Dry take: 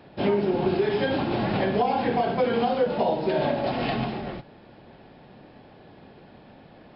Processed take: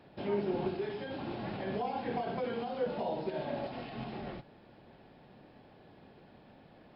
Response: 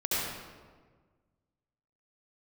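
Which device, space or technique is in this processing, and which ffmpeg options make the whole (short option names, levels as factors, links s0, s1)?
de-esser from a sidechain: -filter_complex "[0:a]asplit=2[s0][s1];[s1]highpass=f=4300:w=0.5412,highpass=f=4300:w=1.3066,apad=whole_len=306833[s2];[s0][s2]sidechaincompress=threshold=0.00251:ratio=8:attack=4.1:release=96,volume=0.398"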